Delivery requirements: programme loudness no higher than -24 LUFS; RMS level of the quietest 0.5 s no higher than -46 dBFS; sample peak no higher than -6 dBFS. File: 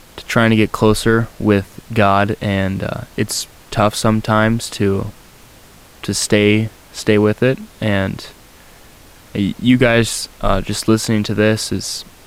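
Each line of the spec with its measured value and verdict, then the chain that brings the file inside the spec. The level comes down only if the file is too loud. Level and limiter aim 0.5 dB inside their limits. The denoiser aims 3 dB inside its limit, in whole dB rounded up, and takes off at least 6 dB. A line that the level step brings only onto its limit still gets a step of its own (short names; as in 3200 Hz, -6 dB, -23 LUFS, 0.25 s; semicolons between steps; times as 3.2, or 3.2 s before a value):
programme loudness -16.5 LUFS: fail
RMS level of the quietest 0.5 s -43 dBFS: fail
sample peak -1.5 dBFS: fail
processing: gain -8 dB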